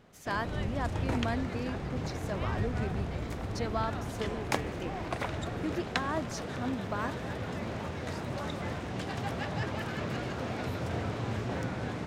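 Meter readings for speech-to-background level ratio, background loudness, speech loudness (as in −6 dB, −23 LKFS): −2.0 dB, −36.0 LKFS, −38.0 LKFS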